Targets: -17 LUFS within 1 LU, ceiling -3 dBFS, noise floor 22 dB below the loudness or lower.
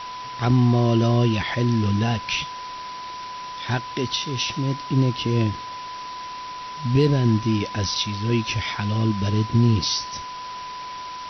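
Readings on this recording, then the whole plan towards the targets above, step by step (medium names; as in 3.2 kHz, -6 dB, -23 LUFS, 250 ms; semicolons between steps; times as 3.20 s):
steady tone 1 kHz; tone level -32 dBFS; noise floor -34 dBFS; noise floor target -45 dBFS; loudness -22.5 LUFS; peak level -9.0 dBFS; loudness target -17.0 LUFS
-> band-stop 1 kHz, Q 30; noise print and reduce 11 dB; trim +5.5 dB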